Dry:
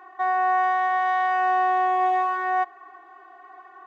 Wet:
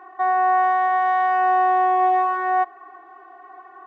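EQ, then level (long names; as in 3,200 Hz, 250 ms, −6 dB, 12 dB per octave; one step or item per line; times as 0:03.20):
high-shelf EQ 2,200 Hz −11.5 dB
+5.0 dB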